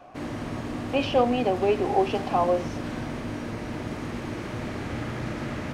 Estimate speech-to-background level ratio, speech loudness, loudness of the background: 8.5 dB, -25.0 LUFS, -33.5 LUFS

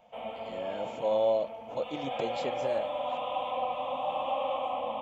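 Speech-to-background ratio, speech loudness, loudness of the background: 1.5 dB, -33.0 LUFS, -34.5 LUFS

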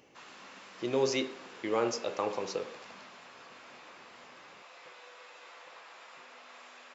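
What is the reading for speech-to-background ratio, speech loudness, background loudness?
17.0 dB, -33.5 LUFS, -50.5 LUFS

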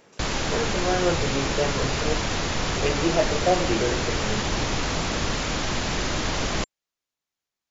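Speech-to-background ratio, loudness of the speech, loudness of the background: -1.5 dB, -27.5 LUFS, -26.0 LUFS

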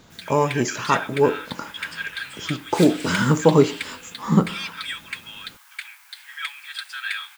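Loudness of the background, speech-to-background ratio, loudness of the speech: -32.5 LUFS, 11.5 dB, -21.0 LUFS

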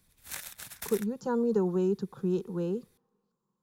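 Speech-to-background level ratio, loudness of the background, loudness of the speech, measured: 11.0 dB, -41.5 LUFS, -30.5 LUFS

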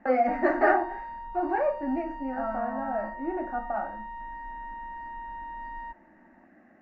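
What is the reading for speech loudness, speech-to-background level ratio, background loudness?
-29.0 LUFS, 11.0 dB, -40.0 LUFS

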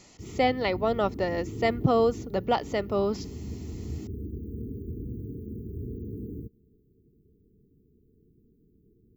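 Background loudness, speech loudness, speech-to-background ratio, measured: -39.0 LUFS, -27.0 LUFS, 12.0 dB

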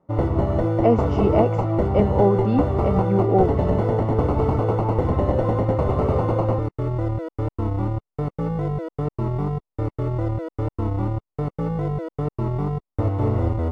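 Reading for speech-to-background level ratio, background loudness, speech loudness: 1.0 dB, -23.5 LUFS, -22.5 LUFS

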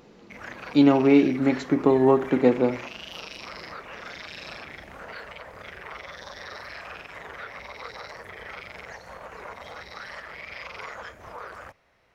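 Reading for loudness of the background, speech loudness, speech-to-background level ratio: -39.5 LUFS, -20.5 LUFS, 19.0 dB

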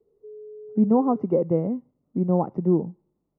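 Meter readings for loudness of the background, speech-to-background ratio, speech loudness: -42.5 LUFS, 18.5 dB, -24.0 LUFS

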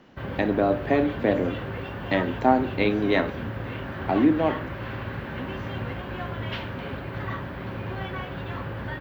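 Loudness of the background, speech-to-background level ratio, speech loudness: -33.5 LUFS, 9.0 dB, -24.5 LUFS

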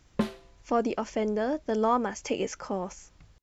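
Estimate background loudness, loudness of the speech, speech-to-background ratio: -33.5 LUFS, -29.5 LUFS, 4.0 dB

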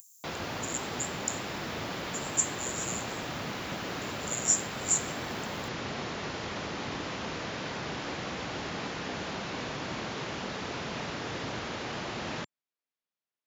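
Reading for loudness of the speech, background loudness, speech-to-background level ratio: -31.5 LUFS, -36.0 LUFS, 4.5 dB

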